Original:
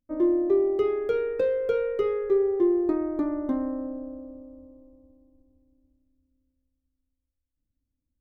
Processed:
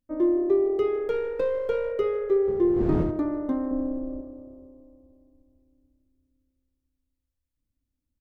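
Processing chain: 1.08–1.92 s: partial rectifier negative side -3 dB; 2.47–3.10 s: wind noise 230 Hz -27 dBFS; 3.71–4.21 s: tilt EQ -2.5 dB/octave; frequency-shifting echo 150 ms, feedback 52%, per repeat +34 Hz, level -18.5 dB

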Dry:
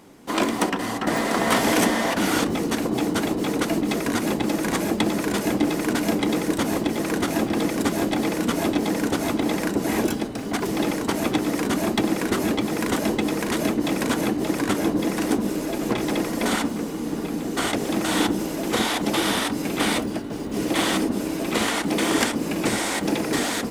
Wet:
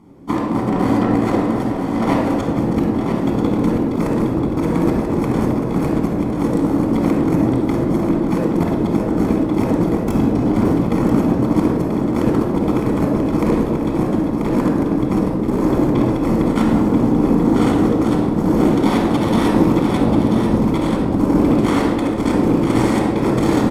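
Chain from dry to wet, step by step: tilt shelf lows +10 dB, about 880 Hz; hum notches 50/100/150/200/250 Hz; compressor with a negative ratio -20 dBFS, ratio -0.5; Chebyshev shaper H 5 -21 dB, 7 -17 dB, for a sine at -5 dBFS; delay 986 ms -6.5 dB; reverberation RT60 1.7 s, pre-delay 21 ms, DRR -1.5 dB; trim -3 dB

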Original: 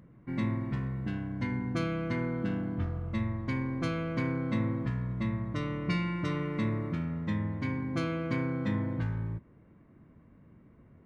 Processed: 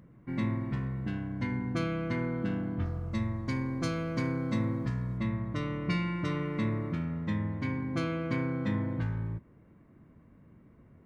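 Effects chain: 2.85–5.18 s: resonant high shelf 4 kHz +6.5 dB, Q 1.5

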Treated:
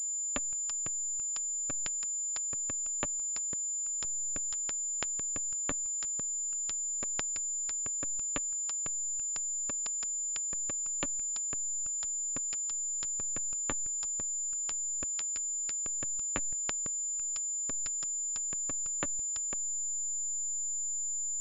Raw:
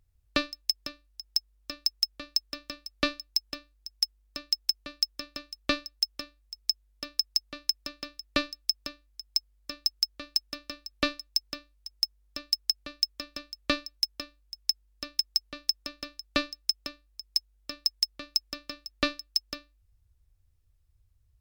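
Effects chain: gate with hold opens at -53 dBFS; compression 16:1, threshold -32 dBFS, peak gain reduction 13.5 dB; flange 0.1 Hz, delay 4.4 ms, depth 6.9 ms, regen -47%; hysteresis with a dead band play -29 dBFS; class-D stage that switches slowly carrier 7.1 kHz; trim +7 dB

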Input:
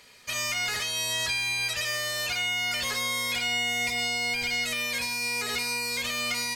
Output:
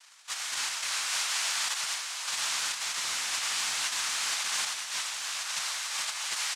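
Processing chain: Chebyshev high-pass 2.2 kHz, order 6; comb 1.5 ms, depth 88%; in parallel at -2.5 dB: peak limiter -24.5 dBFS, peak gain reduction 7 dB; on the sum: rippled Chebyshev low-pass 5.1 kHz, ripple 6 dB; wavefolder -24.5 dBFS; noise-vocoded speech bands 2; on a send: delay 965 ms -14.5 dB; on the sum: trim -1 dB

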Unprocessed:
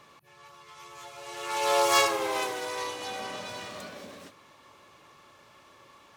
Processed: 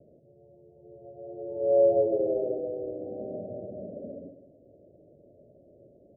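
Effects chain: steep low-pass 660 Hz 96 dB/octave; thinning echo 68 ms, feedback 70%, high-pass 170 Hz, level -9 dB; trim +5 dB

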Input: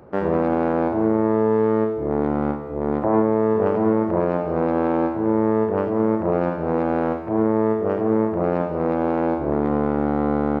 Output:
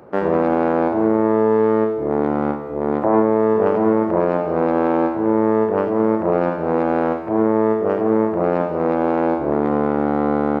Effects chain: high-pass 210 Hz 6 dB/octave; trim +4 dB

